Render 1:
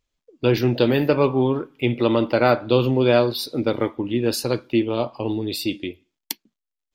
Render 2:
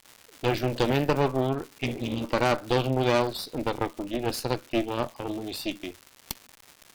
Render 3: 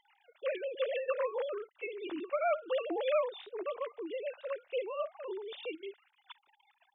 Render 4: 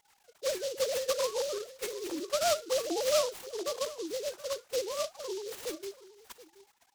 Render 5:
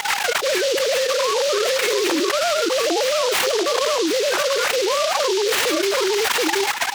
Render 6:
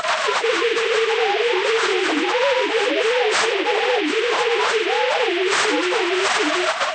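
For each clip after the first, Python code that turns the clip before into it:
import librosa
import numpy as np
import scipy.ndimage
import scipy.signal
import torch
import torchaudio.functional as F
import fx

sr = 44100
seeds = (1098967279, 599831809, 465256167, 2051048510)

y1 = fx.spec_repair(x, sr, seeds[0], start_s=1.86, length_s=0.35, low_hz=260.0, high_hz=2100.0, source='both')
y1 = fx.dmg_crackle(y1, sr, seeds[1], per_s=350.0, level_db=-29.0)
y1 = fx.cheby_harmonics(y1, sr, harmonics=(6,), levels_db=(-13,), full_scale_db=-3.0)
y1 = F.gain(torch.from_numpy(y1), -7.5).numpy()
y2 = fx.sine_speech(y1, sr)
y2 = F.gain(torch.from_numpy(y2), -8.5).numpy()
y3 = y2 + 10.0 ** (-17.5 / 20.0) * np.pad(y2, (int(727 * sr / 1000.0), 0))[:len(y2)]
y3 = fx.noise_mod_delay(y3, sr, seeds[2], noise_hz=4700.0, depth_ms=0.1)
y3 = F.gain(torch.from_numpy(y3), 2.5).numpy()
y4 = scipy.signal.sosfilt(scipy.signal.butter(2, 92.0, 'highpass', fs=sr, output='sos'), y3)
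y4 = fx.peak_eq(y4, sr, hz=1900.0, db=12.0, octaves=2.9)
y4 = fx.env_flatten(y4, sr, amount_pct=100)
y4 = F.gain(torch.from_numpy(y4), -2.0).numpy()
y5 = fx.partial_stretch(y4, sr, pct=79)
y5 = fx.peak_eq(y5, sr, hz=340.0, db=-6.0, octaves=0.21)
y5 = F.gain(torch.from_numpy(y5), 3.0).numpy()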